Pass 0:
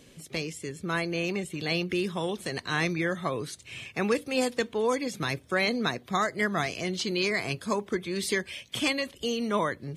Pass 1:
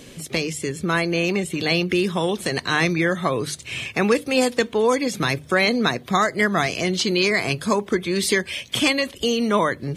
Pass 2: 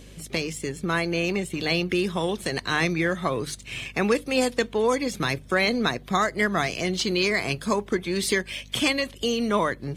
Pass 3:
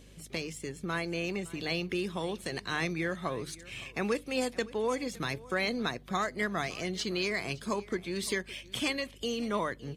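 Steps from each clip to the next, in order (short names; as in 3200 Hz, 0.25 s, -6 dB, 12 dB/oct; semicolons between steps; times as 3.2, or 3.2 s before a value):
notches 50/100/150 Hz; in parallel at +0.5 dB: compressor, threshold -35 dBFS, peak gain reduction 13.5 dB; on the sum: gain +5.5 dB
in parallel at -7 dB: crossover distortion -33 dBFS; on the sum: hum 50 Hz, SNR 22 dB; gain -6.5 dB
echo 0.563 s -20.5 dB; gain -8.5 dB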